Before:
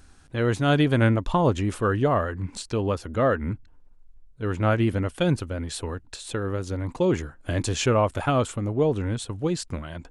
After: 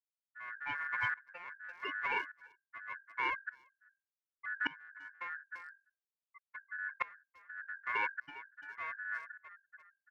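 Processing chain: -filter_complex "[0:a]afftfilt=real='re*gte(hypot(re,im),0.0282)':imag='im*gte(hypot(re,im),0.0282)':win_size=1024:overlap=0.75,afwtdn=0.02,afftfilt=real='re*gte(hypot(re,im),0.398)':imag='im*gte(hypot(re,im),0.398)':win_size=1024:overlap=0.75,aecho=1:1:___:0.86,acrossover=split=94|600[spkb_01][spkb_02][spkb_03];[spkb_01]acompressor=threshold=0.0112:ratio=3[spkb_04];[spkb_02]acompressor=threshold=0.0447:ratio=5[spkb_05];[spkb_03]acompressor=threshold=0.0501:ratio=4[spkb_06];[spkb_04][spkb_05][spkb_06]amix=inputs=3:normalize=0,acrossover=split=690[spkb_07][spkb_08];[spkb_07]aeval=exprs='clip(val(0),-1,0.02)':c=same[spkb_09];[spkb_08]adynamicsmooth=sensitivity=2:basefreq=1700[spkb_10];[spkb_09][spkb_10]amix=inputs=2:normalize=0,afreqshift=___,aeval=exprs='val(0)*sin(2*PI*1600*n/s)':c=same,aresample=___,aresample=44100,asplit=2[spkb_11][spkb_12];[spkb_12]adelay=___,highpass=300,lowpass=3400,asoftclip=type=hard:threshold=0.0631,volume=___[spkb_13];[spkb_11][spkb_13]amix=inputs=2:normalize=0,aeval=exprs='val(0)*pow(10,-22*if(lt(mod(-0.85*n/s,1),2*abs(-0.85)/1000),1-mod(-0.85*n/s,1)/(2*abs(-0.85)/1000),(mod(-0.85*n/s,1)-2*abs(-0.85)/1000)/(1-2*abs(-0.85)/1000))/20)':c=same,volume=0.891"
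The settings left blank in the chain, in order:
1.6, 22, 16000, 340, 0.2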